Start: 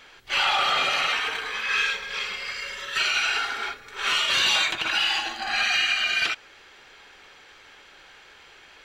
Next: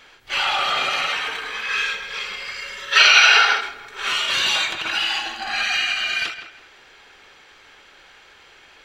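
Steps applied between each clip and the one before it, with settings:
feedback echo with a low-pass in the loop 164 ms, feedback 28%, low-pass 3,100 Hz, level −10.5 dB
gain on a spectral selection 0:02.92–0:03.61, 390–6,400 Hz +11 dB
every ending faded ahead of time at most 110 dB per second
level +1 dB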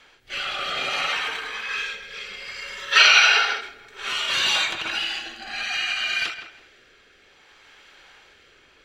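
rotating-speaker cabinet horn 0.6 Hz
level −1 dB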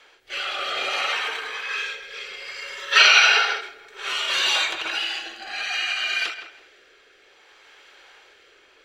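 low shelf with overshoot 280 Hz −10 dB, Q 1.5

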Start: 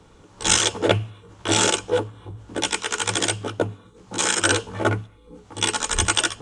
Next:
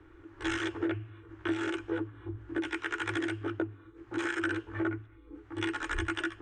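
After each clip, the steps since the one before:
drawn EQ curve 100 Hz 0 dB, 210 Hz −23 dB, 330 Hz +12 dB, 460 Hz −10 dB, 930 Hz −7 dB, 1,700 Hz +5 dB, 4,200 Hz −16 dB, 7,600 Hz −22 dB, 11,000 Hz −20 dB
downward compressor 6 to 1, threshold −26 dBFS, peak gain reduction 14 dB
level −3.5 dB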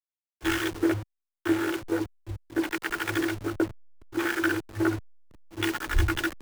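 hold until the input has moved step −37 dBFS
multiband upward and downward expander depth 100%
level +5.5 dB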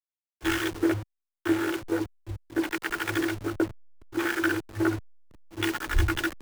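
no processing that can be heard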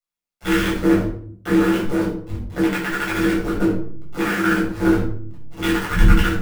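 amplitude modulation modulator 140 Hz, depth 75%
convolution reverb RT60 0.55 s, pre-delay 7 ms, DRR −6 dB
level +1.5 dB

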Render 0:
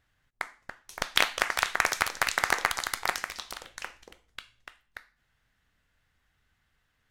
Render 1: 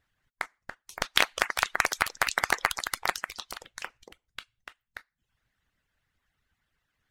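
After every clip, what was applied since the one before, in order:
reverb reduction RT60 0.55 s
harmonic and percussive parts rebalanced harmonic −12 dB
level +1 dB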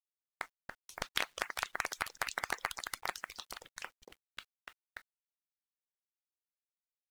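downward compressor 1.5 to 1, threshold −34 dBFS, peak gain reduction 7 dB
bit reduction 10 bits
level −5.5 dB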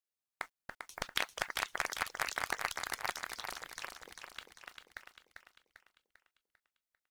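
repeating echo 396 ms, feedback 49%, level −6 dB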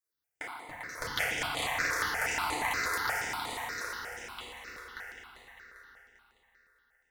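feedback delay network reverb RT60 3.2 s, high-frequency decay 0.5×, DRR −9.5 dB
step-sequenced phaser 8.4 Hz 810–5,500 Hz

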